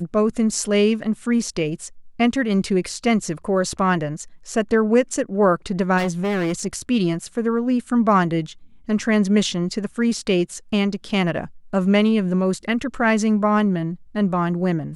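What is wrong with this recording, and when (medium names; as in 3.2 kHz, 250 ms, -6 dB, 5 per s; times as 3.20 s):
5.97–6.67 s: clipped -19 dBFS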